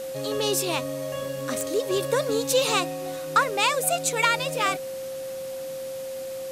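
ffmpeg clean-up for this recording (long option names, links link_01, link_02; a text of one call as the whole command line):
ffmpeg -i in.wav -af "adeclick=threshold=4,bandreject=frequency=530:width=30,afwtdn=0.0063" out.wav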